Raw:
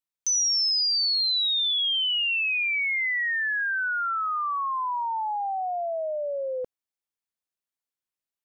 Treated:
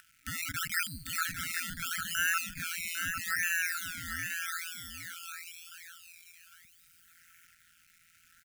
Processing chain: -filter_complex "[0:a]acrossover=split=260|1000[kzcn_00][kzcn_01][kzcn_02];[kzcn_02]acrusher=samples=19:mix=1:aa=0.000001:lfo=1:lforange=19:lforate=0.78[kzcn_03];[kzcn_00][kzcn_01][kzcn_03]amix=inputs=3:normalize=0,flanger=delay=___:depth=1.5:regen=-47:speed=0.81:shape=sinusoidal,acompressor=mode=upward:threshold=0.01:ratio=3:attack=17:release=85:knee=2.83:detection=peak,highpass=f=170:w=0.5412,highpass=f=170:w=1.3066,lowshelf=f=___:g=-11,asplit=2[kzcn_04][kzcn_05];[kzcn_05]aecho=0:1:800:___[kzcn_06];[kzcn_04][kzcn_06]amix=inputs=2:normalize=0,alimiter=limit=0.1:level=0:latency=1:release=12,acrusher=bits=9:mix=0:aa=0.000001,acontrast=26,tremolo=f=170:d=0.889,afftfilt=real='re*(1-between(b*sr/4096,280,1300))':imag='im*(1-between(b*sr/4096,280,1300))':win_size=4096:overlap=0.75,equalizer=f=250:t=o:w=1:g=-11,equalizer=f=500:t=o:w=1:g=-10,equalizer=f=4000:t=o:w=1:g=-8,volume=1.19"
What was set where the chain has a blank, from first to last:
2.2, 380, 0.473